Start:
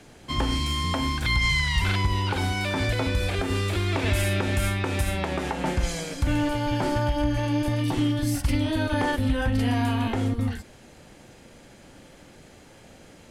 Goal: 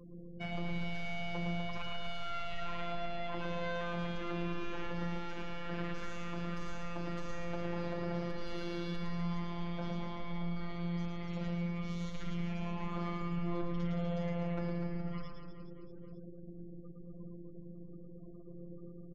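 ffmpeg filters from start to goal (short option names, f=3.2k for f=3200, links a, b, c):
-filter_complex "[0:a]lowpass=f=9.8k:w=0.5412,lowpass=f=9.8k:w=1.3066,asetrate=30649,aresample=44100,equalizer=f=4.8k:t=o:w=0.27:g=5.5,afftfilt=real='re*gte(hypot(re,im),0.00891)':imag='im*gte(hypot(re,im),0.00891)':win_size=1024:overlap=0.75,acompressor=threshold=-37dB:ratio=3,asoftclip=type=tanh:threshold=-33dB,afftfilt=real='hypot(re,im)*cos(PI*b)':imag='0':win_size=1024:overlap=0.75,acrossover=split=2800[a][b];[b]acompressor=threshold=-58dB:ratio=4:attack=1:release=60[c];[a][c]amix=inputs=2:normalize=0,asplit=2[d][e];[e]aecho=0:1:110|247.5|419.4|634.2|902.8:0.631|0.398|0.251|0.158|0.1[f];[d][f]amix=inputs=2:normalize=0,volume=3.5dB"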